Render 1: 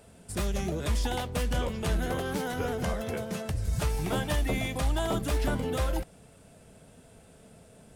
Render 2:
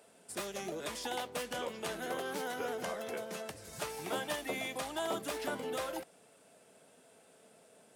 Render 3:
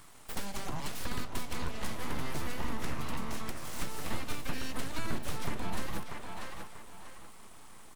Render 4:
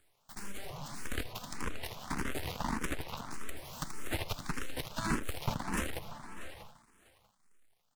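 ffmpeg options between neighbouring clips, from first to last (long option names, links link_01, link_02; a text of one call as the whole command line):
ffmpeg -i in.wav -af "highpass=350,volume=-4dB" out.wav
ffmpeg -i in.wav -filter_complex "[0:a]aeval=exprs='abs(val(0))':channel_layout=same,asplit=2[link_01][link_02];[link_02]adelay=639,lowpass=frequency=4400:poles=1,volume=-10.5dB,asplit=2[link_03][link_04];[link_04]adelay=639,lowpass=frequency=4400:poles=1,volume=0.32,asplit=2[link_05][link_06];[link_06]adelay=639,lowpass=frequency=4400:poles=1,volume=0.32[link_07];[link_01][link_03][link_05][link_07]amix=inputs=4:normalize=0,acrossover=split=370[link_08][link_09];[link_09]acompressor=threshold=-49dB:ratio=6[link_10];[link_08][link_10]amix=inputs=2:normalize=0,volume=9.5dB" out.wav
ffmpeg -i in.wav -filter_complex "[0:a]aecho=1:1:81:0.562,aeval=exprs='0.168*(cos(1*acos(clip(val(0)/0.168,-1,1)))-cos(1*PI/2))+0.0422*(cos(3*acos(clip(val(0)/0.168,-1,1)))-cos(3*PI/2))+0.0015*(cos(5*acos(clip(val(0)/0.168,-1,1)))-cos(5*PI/2))+0.0237*(cos(8*acos(clip(val(0)/0.168,-1,1)))-cos(8*PI/2))':channel_layout=same,asplit=2[link_01][link_02];[link_02]afreqshift=1.7[link_03];[link_01][link_03]amix=inputs=2:normalize=1,volume=1.5dB" out.wav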